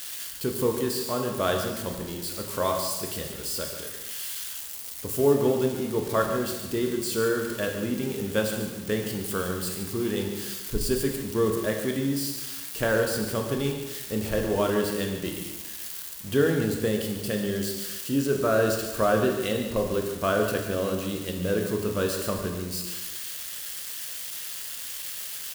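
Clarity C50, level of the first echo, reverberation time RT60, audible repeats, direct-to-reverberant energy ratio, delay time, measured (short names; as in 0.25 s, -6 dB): 4.5 dB, -10.5 dB, 1.2 s, 1, 2.0 dB, 0.143 s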